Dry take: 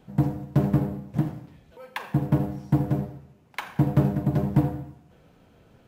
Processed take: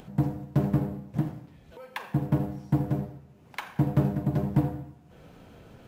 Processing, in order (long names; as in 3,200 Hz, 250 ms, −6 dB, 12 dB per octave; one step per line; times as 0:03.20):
upward compression, threshold −37 dBFS
level −3 dB